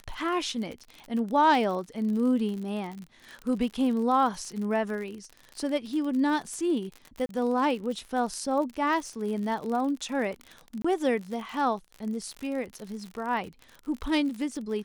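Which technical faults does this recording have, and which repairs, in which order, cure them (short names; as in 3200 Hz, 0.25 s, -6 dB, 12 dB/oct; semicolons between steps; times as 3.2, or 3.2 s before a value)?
crackle 56/s -34 dBFS
7.26–7.29 gap 32 ms
10.82–10.85 gap 25 ms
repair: de-click; interpolate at 7.26, 32 ms; interpolate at 10.82, 25 ms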